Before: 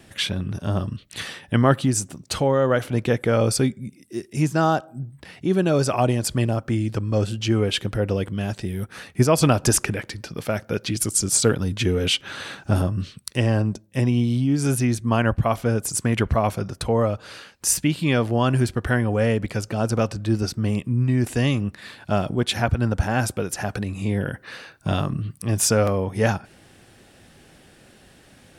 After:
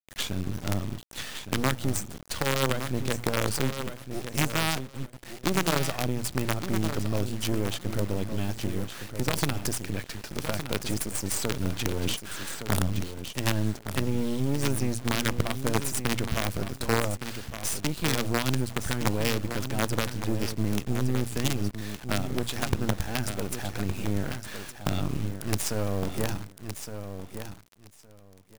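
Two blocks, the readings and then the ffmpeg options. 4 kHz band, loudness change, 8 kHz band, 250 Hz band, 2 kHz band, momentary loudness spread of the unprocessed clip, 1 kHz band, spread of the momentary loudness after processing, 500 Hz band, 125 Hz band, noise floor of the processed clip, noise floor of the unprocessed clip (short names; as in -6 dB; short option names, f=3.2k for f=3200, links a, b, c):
-4.0 dB, -7.5 dB, -7.0 dB, -7.0 dB, -4.0 dB, 11 LU, -7.0 dB, 9 LU, -9.0 dB, -8.0 dB, -50 dBFS, -53 dBFS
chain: -filter_complex "[0:a]bandreject=f=60:t=h:w=6,bandreject=f=120:t=h:w=6,bandreject=f=180:t=h:w=6,acrossover=split=290|3000[a][b][c];[b]acompressor=threshold=-34dB:ratio=2[d];[a][d][c]amix=inputs=3:normalize=0,alimiter=limit=-16.5dB:level=0:latency=1:release=182,acrusher=bits=4:dc=4:mix=0:aa=0.000001,aecho=1:1:1164|2328:0.355|0.0568"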